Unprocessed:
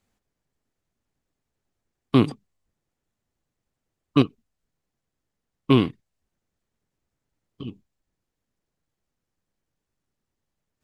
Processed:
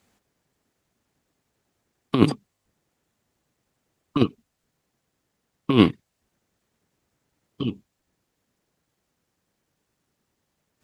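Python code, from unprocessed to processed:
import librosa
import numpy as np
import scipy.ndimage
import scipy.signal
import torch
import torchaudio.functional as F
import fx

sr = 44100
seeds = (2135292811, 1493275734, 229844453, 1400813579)

y = fx.highpass(x, sr, hz=120.0, slope=6)
y = fx.over_compress(y, sr, threshold_db=-20.0, ratio=-0.5)
y = F.gain(torch.from_numpy(y), 5.5).numpy()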